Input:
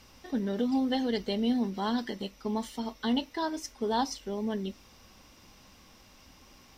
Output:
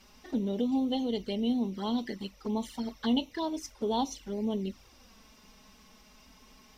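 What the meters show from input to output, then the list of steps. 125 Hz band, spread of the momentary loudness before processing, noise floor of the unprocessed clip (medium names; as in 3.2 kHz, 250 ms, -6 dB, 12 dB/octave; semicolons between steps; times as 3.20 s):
0.0 dB, 8 LU, -57 dBFS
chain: gain riding within 3 dB 2 s; touch-sensitive flanger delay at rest 5.7 ms, full sweep at -27.5 dBFS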